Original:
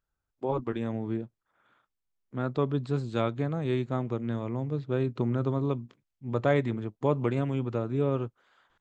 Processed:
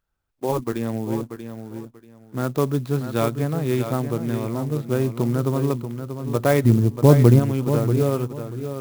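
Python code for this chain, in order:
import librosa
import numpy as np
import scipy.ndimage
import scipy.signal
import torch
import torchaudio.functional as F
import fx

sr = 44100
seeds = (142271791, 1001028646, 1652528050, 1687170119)

y = fx.tilt_eq(x, sr, slope=-4.0, at=(6.64, 7.38), fade=0.02)
y = fx.echo_feedback(y, sr, ms=636, feedback_pct=22, wet_db=-9)
y = fx.clock_jitter(y, sr, seeds[0], jitter_ms=0.036)
y = y * 10.0 ** (6.0 / 20.0)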